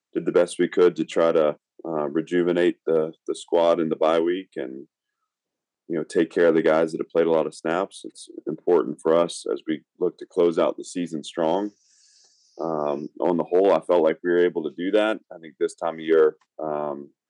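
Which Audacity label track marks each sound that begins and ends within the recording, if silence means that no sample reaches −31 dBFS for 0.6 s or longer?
5.900000	11.680000	sound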